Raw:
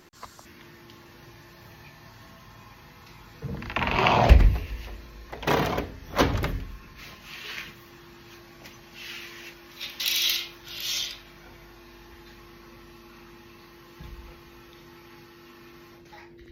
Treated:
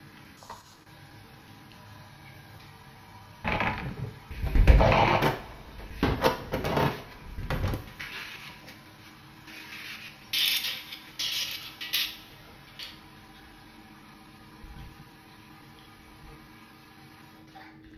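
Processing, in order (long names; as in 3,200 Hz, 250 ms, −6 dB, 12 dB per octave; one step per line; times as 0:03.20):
slices reordered back to front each 113 ms, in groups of 7
coupled-rooms reverb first 0.38 s, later 1.6 s, from −19 dB, DRR 3 dB
wrong playback speed 48 kHz file played as 44.1 kHz
level −2.5 dB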